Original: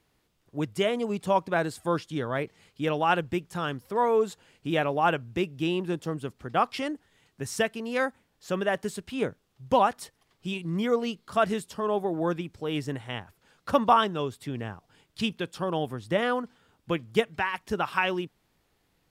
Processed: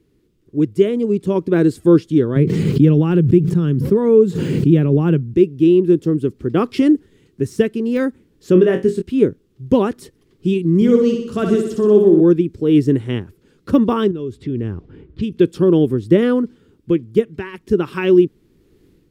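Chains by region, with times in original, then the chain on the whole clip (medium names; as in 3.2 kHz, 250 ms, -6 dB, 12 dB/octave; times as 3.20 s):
2.36–5.34 s: high-pass 110 Hz + peaking EQ 150 Hz +13.5 dB 0.96 oct + swell ahead of each attack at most 23 dB/s
8.53–9.02 s: treble shelf 7.7 kHz -7.5 dB + flutter echo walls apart 3.8 m, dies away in 0.24 s
10.75–12.21 s: peaking EQ 6.6 kHz +6.5 dB 0.66 oct + flutter echo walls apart 10.6 m, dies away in 0.71 s
14.11–15.39 s: level-controlled noise filter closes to 1.3 kHz, open at -26.5 dBFS + peaking EQ 63 Hz +12 dB 0.87 oct + compression 2.5:1, threshold -43 dBFS
whole clip: de-esser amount 80%; resonant low shelf 520 Hz +11.5 dB, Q 3; level rider; trim -1 dB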